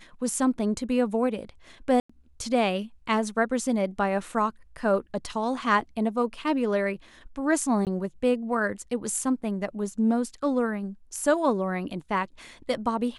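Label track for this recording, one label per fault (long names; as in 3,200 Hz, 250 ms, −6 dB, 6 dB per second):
2.000000	2.100000	drop-out 95 ms
7.850000	7.870000	drop-out 18 ms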